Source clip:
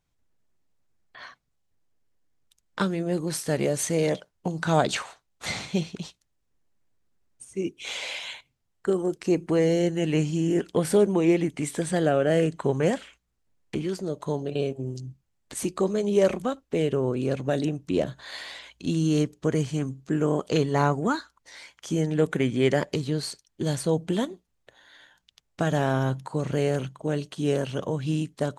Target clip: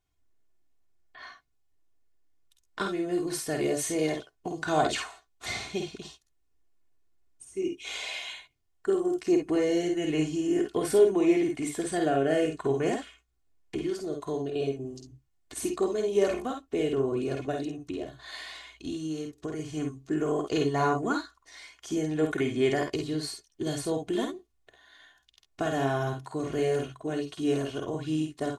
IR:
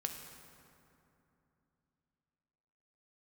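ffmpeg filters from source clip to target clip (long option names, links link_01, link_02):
-filter_complex "[0:a]aecho=1:1:2.8:0.65,asettb=1/sr,asplit=3[link_01][link_02][link_03];[link_01]atrim=end=17.514[link_04];[link_02]atrim=start=17.51:end=19.77,asetpts=PTS-STARTPTS,afade=type=in:duration=0.004:curve=qsin,afade=type=out:start_time=2.256:duration=0.004:curve=qsin,acompressor=threshold=-27dB:ratio=6[link_05];[link_03]atrim=start=19.766[link_06];[link_04][link_05]acrossfade=duration=0.004:curve1=hsin:curve2=qsin[link_07];[link_07][link_06]acrossfade=duration=0.004:curve1=qsin:curve2=hsin,aecho=1:1:51|65:0.562|0.316,volume=-5.5dB"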